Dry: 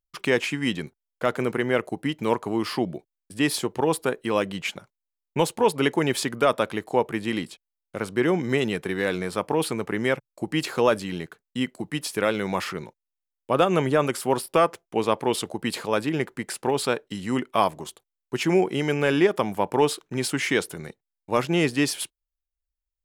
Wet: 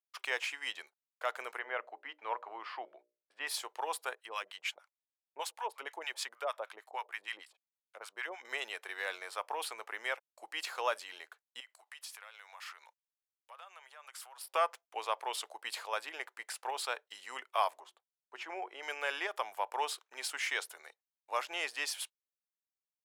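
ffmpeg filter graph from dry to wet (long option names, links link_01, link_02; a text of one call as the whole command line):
ffmpeg -i in.wav -filter_complex "[0:a]asettb=1/sr,asplit=3[link_01][link_02][link_03];[link_01]atrim=end=1.594[link_04];[link_02]atrim=start=1.59:end=3.47,asetpts=PTS-STARTPTS,afade=type=in:duration=0.004:curve=qsin,afade=type=out:start_time=1.876:duration=0.004:curve=qsin,highpass=140,lowpass=2200,bandreject=frequency=60:width_type=h:width=6,bandreject=frequency=120:width_type=h:width=6,bandreject=frequency=180:width_type=h:width=6,bandreject=frequency=240:width_type=h:width=6,bandreject=frequency=300:width_type=h:width=6,bandreject=frequency=360:width_type=h:width=6,bandreject=frequency=420:width_type=h:width=6,bandreject=frequency=480:width_type=h:width=6,bandreject=frequency=540:width_type=h:width=6,bandreject=frequency=600:width_type=h:width=6[link_05];[link_03]atrim=start=3.466[link_06];[link_04][link_05]acrossfade=duration=0.004:curve1=hsin:curve2=qsin[link_07];[link_07][link_06]acrossfade=duration=0.004:curve1=qsin:curve2=hsin,asettb=1/sr,asplit=3[link_08][link_09][link_10];[link_08]atrim=end=4.154[link_11];[link_09]atrim=start=4.15:end=8.45,asetpts=PTS-STARTPTS,afade=type=in:duration=0.004:curve=qsin,afade=type=out:start_time=4.296:duration=0.004:curve=qsin,equalizer=frequency=2100:width=0.64:gain=2.5,acrossover=split=870[link_12][link_13];[link_12]aeval=exprs='val(0)*(1-1/2+1/2*cos(2*PI*6.5*n/s))':channel_layout=same[link_14];[link_13]aeval=exprs='val(0)*(1-1/2-1/2*cos(2*PI*6.5*n/s))':channel_layout=same[link_15];[link_14][link_15]amix=inputs=2:normalize=0[link_16];[link_10]atrim=start=8.446[link_17];[link_11][link_16]acrossfade=duration=0.004:curve1=hsin:curve2=qsin[link_18];[link_18][link_17]acrossfade=duration=0.004:curve1=qsin:curve2=hsin,asettb=1/sr,asplit=3[link_19][link_20][link_21];[link_19]atrim=end=11.604[link_22];[link_20]atrim=start=11.6:end=14.41,asetpts=PTS-STARTPTS,afade=type=in:duration=0.004:curve=qsin,afade=type=out:start_time=2.806:duration=0.004:curve=qsin,acompressor=threshold=-32dB:ratio=12:attack=3.2:release=140:knee=1:detection=peak,highpass=840[link_23];[link_21]atrim=start=14.406[link_24];[link_22][link_23]acrossfade=duration=0.004:curve1=hsin:curve2=qsin[link_25];[link_25][link_24]acrossfade=duration=0.004:curve1=qsin:curve2=hsin,asettb=1/sr,asplit=3[link_26][link_27][link_28];[link_26]atrim=end=17.804[link_29];[link_27]atrim=start=17.8:end=18.83,asetpts=PTS-STARTPTS,afade=type=in:duration=0.004:curve=qsin,afade=type=out:start_time=1.026:duration=0.004:curve=qsin,lowpass=frequency=1300:poles=1,bandreject=frequency=60:width_type=h:width=6,bandreject=frequency=120:width_type=h:width=6,bandreject=frequency=180:width_type=h:width=6,bandreject=frequency=240:width_type=h:width=6,bandreject=frequency=300:width_type=h:width=6,bandreject=frequency=360:width_type=h:width=6[link_30];[link_28]atrim=start=18.826[link_31];[link_29][link_30]acrossfade=duration=0.004:curve1=hsin:curve2=qsin[link_32];[link_32][link_31]acrossfade=duration=0.004:curve1=qsin:curve2=hsin,highpass=frequency=670:width=0.5412,highpass=frequency=670:width=1.3066,equalizer=frequency=9900:width=1.5:gain=-2.5,volume=-8dB" out.wav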